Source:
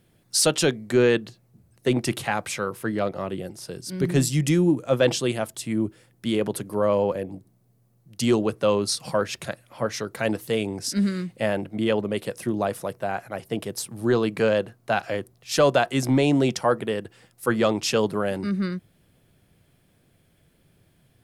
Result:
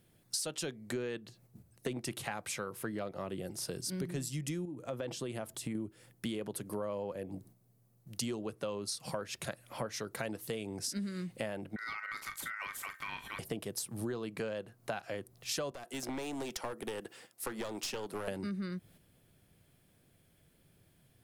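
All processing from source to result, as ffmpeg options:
-filter_complex "[0:a]asettb=1/sr,asplit=3[a][b][c];[a]atrim=end=4.654[d];[b]atrim=start=4.65:end=5.75,asetpts=PTS-STARTPTS,afade=t=in:d=0.004:c=qsin,afade=t=out:st=1.096:d=0.004:c=qsin,aemphasis=mode=production:type=50kf,acompressor=threshold=-29dB:ratio=2.5:attack=3.2:release=140:knee=1:detection=peak,lowpass=f=1.5k:p=1[e];[c]atrim=start=5.746[f];[d][e]acrossfade=d=0.004:c1=hsin:c2=qsin[g];[g][f]acrossfade=d=0.004:c1=qsin:c2=hsin,asettb=1/sr,asplit=3[h][i][j];[h]atrim=end=11.764[k];[i]atrim=start=11.76:end=13.39,asetpts=PTS-STARTPTS,afade=t=in:d=0.004:c=qsin,afade=t=out:st=1.626:d=0.004:c=qsin,acompressor=threshold=-38dB:ratio=3:attack=3.2:release=140:knee=1:detection=peak,aeval=exprs='val(0)*sin(2*PI*1700*n/s)':c=same,asplit=2[l][m];[m]adelay=40,volume=-10dB[n];[l][n]amix=inputs=2:normalize=0,atrim=end_sample=71883[o];[j]atrim=start=13.386[p];[k][o]acrossfade=d=0.004:c1=hsin:c2=qsin[q];[q][p]acrossfade=d=0.004:c1=qsin:c2=hsin,asettb=1/sr,asplit=3[r][s][t];[r]atrim=end=15.714[u];[s]atrim=start=15.71:end=18.28,asetpts=PTS-STARTPTS,afade=t=in:d=0.004:c=qsin,afade=t=out:st=2.566:d=0.004:c=qsin,highpass=270,acrossover=split=390|6200[v][w][x];[v]acompressor=threshold=-36dB:ratio=4[y];[w]acompressor=threshold=-33dB:ratio=4[z];[x]acompressor=threshold=-46dB:ratio=4[aa];[y][z][aa]amix=inputs=3:normalize=0,aeval=exprs='clip(val(0),-1,0.0178)':c=same[ab];[t]atrim=start=18.276[ac];[u][ab]acrossfade=d=0.004:c1=hsin:c2=qsin[ad];[ad][ac]acrossfade=d=0.004:c1=qsin:c2=hsin,agate=range=-6dB:threshold=-54dB:ratio=16:detection=peak,highshelf=f=6.6k:g=5.5,acompressor=threshold=-35dB:ratio=10"

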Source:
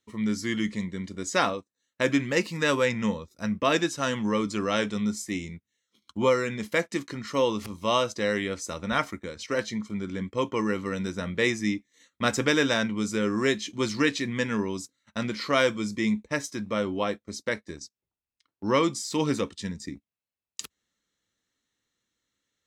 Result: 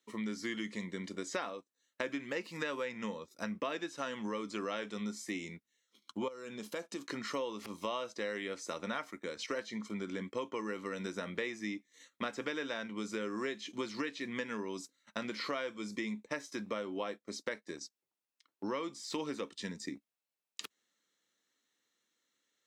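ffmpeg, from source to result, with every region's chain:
-filter_complex "[0:a]asettb=1/sr,asplit=3[a][b][c];[a]atrim=end=6.284[d];[b]atrim=start=6.28:end=7.06,asetpts=PTS-STARTPTS,afade=t=in:d=0.004:c=qsin,afade=t=out:st=0.776:d=0.004:c=qsin,equalizer=f=2k:w=4.1:g=-12.5,acompressor=threshold=-38dB:ratio=2.5:attack=3.2:release=140:knee=1:detection=peak[e];[c]atrim=start=7.056[f];[d][e]acrossfade=d=0.004:c1=hsin:c2=qsin[g];[g][f]acrossfade=d=0.004:c1=qsin:c2=hsin,acrossover=split=4300[h][i];[i]acompressor=threshold=-45dB:ratio=4:attack=1:release=60[j];[h][j]amix=inputs=2:normalize=0,highpass=270,acompressor=threshold=-35dB:ratio=6"

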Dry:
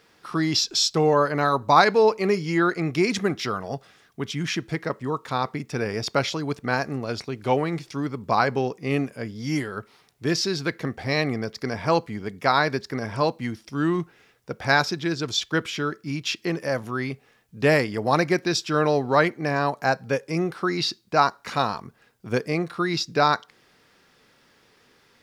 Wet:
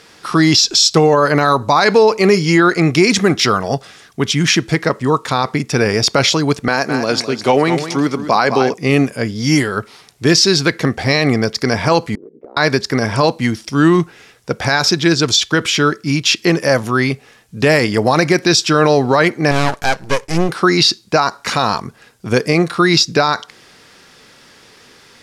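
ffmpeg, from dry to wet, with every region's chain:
-filter_complex "[0:a]asettb=1/sr,asplit=3[a][b][c];[a]atrim=end=6.684[d];[b]atrim=start=6.68:end=8.74,asetpts=PTS-STARTPTS,afade=t=in:d=0.004:c=qsin,afade=t=out:st=2.056:d=0.004:c=qsin,highpass=180,aecho=1:1:208|416|624:0.266|0.0639|0.0153,atrim=end_sample=90846[e];[c]atrim=start=8.736[f];[d][e]acrossfade=d=0.004:c1=hsin:c2=qsin[g];[g][f]acrossfade=d=0.004:c1=qsin:c2=hsin,asettb=1/sr,asplit=3[h][i][j];[h]atrim=end=12.154[k];[i]atrim=start=12.15:end=12.57,asetpts=PTS-STARTPTS,afade=t=in:d=0.004:c=qsin,afade=t=out:st=0.416:d=0.004:c=qsin,asuperpass=centerf=390:order=4:qfactor=1.7,acompressor=threshold=-43dB:ratio=16:attack=3.2:release=140:knee=1:detection=peak,aeval=exprs='val(0)*sin(2*PI*31*n/s)':c=same[l];[j]atrim=start=12.566[m];[k][l]acrossfade=d=0.004:c1=hsin:c2=qsin[n];[n][m]acrossfade=d=0.004:c1=qsin:c2=hsin,asettb=1/sr,asplit=3[o][p][q];[o]atrim=end=19.514[r];[p]atrim=start=19.51:end=20.49,asetpts=PTS-STARTPTS,afade=t=in:d=0.004:c=qsin,afade=t=out:st=0.976:d=0.004:c=qsin,agate=range=-33dB:threshold=-46dB:ratio=3:release=100:detection=peak,aeval=exprs='max(val(0),0)':c=same[s];[q]atrim=start=20.486[t];[r][s]acrossfade=d=0.004:c1=hsin:c2=qsin[u];[u][t]acrossfade=d=0.004:c1=qsin:c2=hsin,lowpass=9.3k,aemphasis=mode=production:type=cd,alimiter=level_in=14dB:limit=-1dB:release=50:level=0:latency=1,volume=-1dB"

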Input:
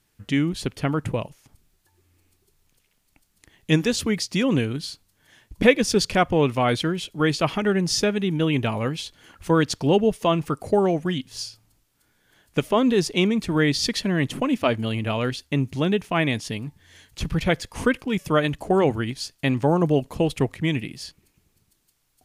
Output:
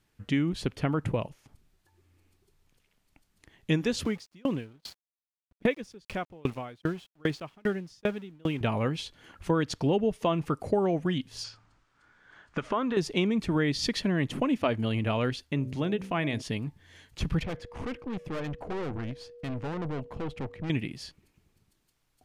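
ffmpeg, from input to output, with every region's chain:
-filter_complex "[0:a]asettb=1/sr,asplit=3[a][b][c];[a]atrim=end=4.054[d];[b]atrim=start=4.05:end=8.61,asetpts=PTS-STARTPTS,afade=t=in:d=0.004:c=qsin,afade=t=out:st=4.556:d=0.004:c=qsin,aeval=exprs='val(0)*gte(abs(val(0)),0.02)':c=same,aeval=exprs='val(0)*pow(10,-35*if(lt(mod(2.5*n/s,1),2*abs(2.5)/1000),1-mod(2.5*n/s,1)/(2*abs(2.5)/1000),(mod(2.5*n/s,1)-2*abs(2.5)/1000)/(1-2*abs(2.5)/1000))/20)':c=same[e];[c]atrim=start=8.606[f];[d][e]acrossfade=d=0.004:c1=hsin:c2=qsin[g];[g][f]acrossfade=d=0.004:c1=qsin:c2=hsin,asettb=1/sr,asplit=3[h][i][j];[h]atrim=end=11.444[k];[i]atrim=start=11.44:end=12.97,asetpts=PTS-STARTPTS,afade=t=in:d=0.004:c=qsin,afade=t=out:st=1.526:d=0.004:c=qsin,lowpass=f=7.7k:w=0.5412,lowpass=f=7.7k:w=1.3066,acompressor=threshold=-25dB:ratio=10:attack=3.2:release=140:knee=1:detection=peak,equalizer=f=1.3k:w=1.1:g=13[l];[j]atrim=start=12.966[m];[k][l]acrossfade=d=0.004:c1=hsin:c2=qsin[n];[n][m]acrossfade=d=0.004:c1=qsin:c2=hsin,asettb=1/sr,asplit=3[o][p][q];[o]atrim=end=15.434[r];[p]atrim=start=15.43:end=16.42,asetpts=PTS-STARTPTS,afade=t=in:d=0.004:c=qsin,afade=t=out:st=0.986:d=0.004:c=qsin,bandreject=f=63.97:t=h:w=4,bandreject=f=127.94:t=h:w=4,bandreject=f=191.91:t=h:w=4,bandreject=f=255.88:t=h:w=4,bandreject=f=319.85:t=h:w=4,bandreject=f=383.82:t=h:w=4,bandreject=f=447.79:t=h:w=4,bandreject=f=511.76:t=h:w=4,bandreject=f=575.73:t=h:w=4,bandreject=f=639.7:t=h:w=4,acompressor=threshold=-28dB:ratio=1.5:attack=3.2:release=140:knee=1:detection=peak[s];[q]atrim=start=16.416[t];[r][s]acrossfade=d=0.004:c1=hsin:c2=qsin[u];[u][t]acrossfade=d=0.004:c1=qsin:c2=hsin,asettb=1/sr,asplit=3[v][w][x];[v]atrim=end=17.434[y];[w]atrim=start=17.43:end=20.7,asetpts=PTS-STARTPTS,afade=t=in:d=0.004:c=qsin,afade=t=out:st=3.266:d=0.004:c=qsin,lowpass=f=1.9k:p=1,aeval=exprs='(tanh(31.6*val(0)+0.55)-tanh(0.55))/31.6':c=same,aeval=exprs='val(0)+0.00562*sin(2*PI*480*n/s)':c=same[z];[x]atrim=start=20.696[aa];[y][z]acrossfade=d=0.004:c1=hsin:c2=qsin[ab];[ab][aa]acrossfade=d=0.004:c1=qsin:c2=hsin,aemphasis=mode=reproduction:type=cd,acompressor=threshold=-21dB:ratio=3,volume=-2dB"

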